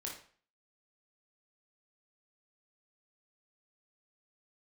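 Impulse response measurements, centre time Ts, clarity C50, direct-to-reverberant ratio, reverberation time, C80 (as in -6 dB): 32 ms, 5.0 dB, -2.5 dB, 0.45 s, 10.5 dB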